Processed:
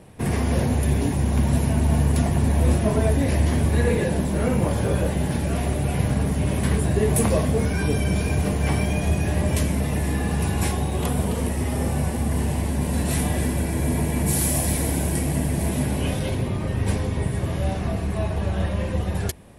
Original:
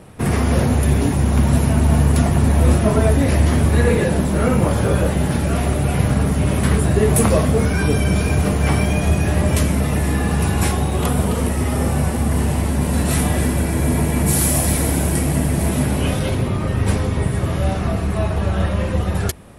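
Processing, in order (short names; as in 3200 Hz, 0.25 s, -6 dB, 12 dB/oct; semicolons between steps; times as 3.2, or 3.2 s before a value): bell 1300 Hz -8.5 dB 0.23 oct; gain -5 dB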